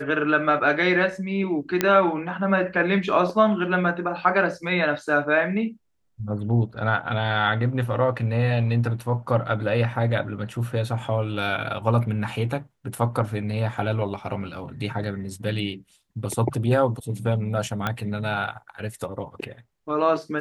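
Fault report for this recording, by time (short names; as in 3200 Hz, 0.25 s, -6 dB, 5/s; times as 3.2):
1.81 pop -5 dBFS
17.87 pop -11 dBFS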